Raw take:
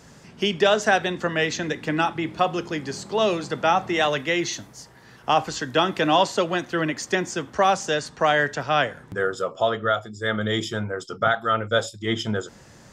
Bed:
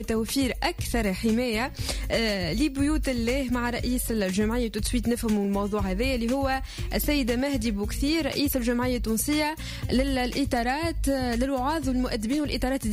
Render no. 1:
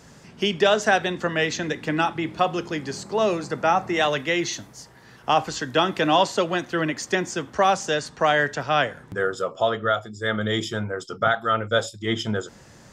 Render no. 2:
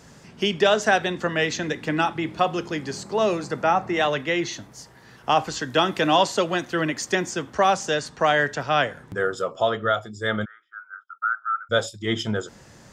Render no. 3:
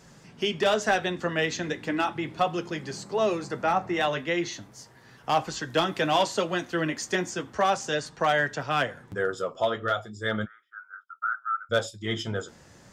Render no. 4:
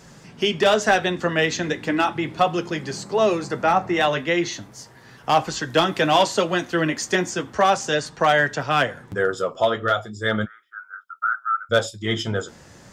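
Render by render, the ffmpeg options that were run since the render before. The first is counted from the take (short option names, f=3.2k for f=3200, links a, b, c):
-filter_complex "[0:a]asettb=1/sr,asplit=3[a][b][c];[a]atrim=end=3.034[d];[b]atrim=start=3.03:end=3.97,asetpts=PTS-STARTPTS,afade=t=in:d=0.004:c=qsin,afade=t=out:st=0.936:d=0.004:c=qsin,equalizer=f=3.3k:t=o:w=0.48:g=-8.5[e];[c]atrim=start=3.966[f];[d][e]acrossfade=d=0.004:c1=hsin:c2=qsin[g];[g][f]acrossfade=d=0.004:c1=qsin:c2=hsin"
-filter_complex "[0:a]asettb=1/sr,asplit=3[a][b][c];[a]atrim=end=3.644[d];[b]atrim=start=3.64:end=4.72,asetpts=PTS-STARTPTS,afade=t=in:d=0.004:c=qsin,afade=t=out:st=1.076:d=0.004:c=qsin,highshelf=f=4.9k:g=-7.5[e];[c]atrim=start=4.716[f];[d][e]acrossfade=d=0.004:c1=hsin:c2=qsin[g];[g][f]acrossfade=d=0.004:c1=qsin:c2=hsin,asettb=1/sr,asplit=3[h][i][j];[h]atrim=end=5.714[k];[i]atrim=start=5.71:end=7.3,asetpts=PTS-STARTPTS,afade=t=in:d=0.004:c=qsin,afade=t=out:st=1.586:d=0.004:c=qsin,highshelf=f=5.8k:g=4[l];[j]atrim=start=7.296[m];[k][l]acrossfade=d=0.004:c1=hsin:c2=qsin[n];[n][m]acrossfade=d=0.004:c1=qsin:c2=hsin,asplit=3[o][p][q];[o]afade=t=out:st=10.44:d=0.02[r];[p]asuperpass=centerf=1400:order=4:qfactor=5.3,afade=t=in:st=10.44:d=0.02,afade=t=out:st=11.69:d=0.02[s];[q]afade=t=in:st=11.69:d=0.02[t];[r][s][t]amix=inputs=3:normalize=0"
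-af "volume=11.5dB,asoftclip=hard,volume=-11.5dB,flanger=delay=5.1:depth=7.5:regen=-47:speed=0.36:shape=triangular"
-af "volume=6dB"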